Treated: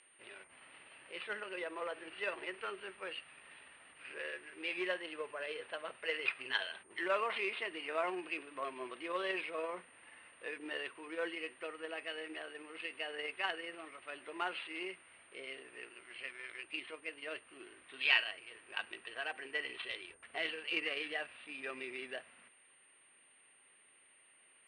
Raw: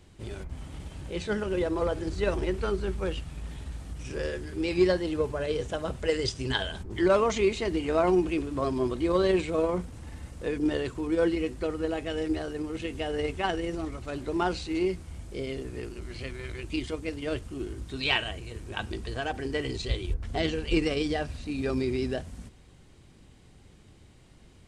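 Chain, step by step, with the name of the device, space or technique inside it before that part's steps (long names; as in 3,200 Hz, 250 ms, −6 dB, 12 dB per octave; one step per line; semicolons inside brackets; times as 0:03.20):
0:16.63–0:17.49: high-shelf EQ 4,600 Hz −7 dB
toy sound module (linearly interpolated sample-rate reduction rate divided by 6×; switching amplifier with a slow clock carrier 9,000 Hz; loudspeaker in its box 790–4,800 Hz, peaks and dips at 810 Hz −5 dB, 1,900 Hz +6 dB, 2,700 Hz +10 dB)
level −5 dB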